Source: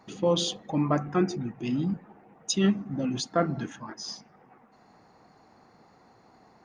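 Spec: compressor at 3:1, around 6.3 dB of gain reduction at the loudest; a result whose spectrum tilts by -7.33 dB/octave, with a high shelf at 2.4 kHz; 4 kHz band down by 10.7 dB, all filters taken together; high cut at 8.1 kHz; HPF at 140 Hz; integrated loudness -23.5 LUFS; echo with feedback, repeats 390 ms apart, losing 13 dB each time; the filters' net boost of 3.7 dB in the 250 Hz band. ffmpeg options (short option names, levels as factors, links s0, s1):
-af "highpass=140,lowpass=8100,equalizer=f=250:t=o:g=6,highshelf=f=2400:g=-8.5,equalizer=f=4000:t=o:g=-5.5,acompressor=threshold=0.0631:ratio=3,aecho=1:1:390|780|1170:0.224|0.0493|0.0108,volume=2.11"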